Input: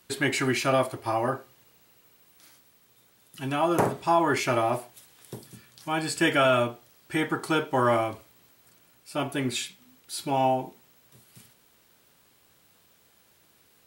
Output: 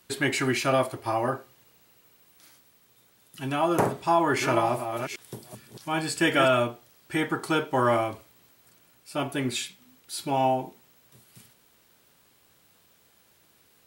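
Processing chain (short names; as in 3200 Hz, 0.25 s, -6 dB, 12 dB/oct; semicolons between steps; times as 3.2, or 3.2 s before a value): 3.99–6.48 reverse delay 0.39 s, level -7 dB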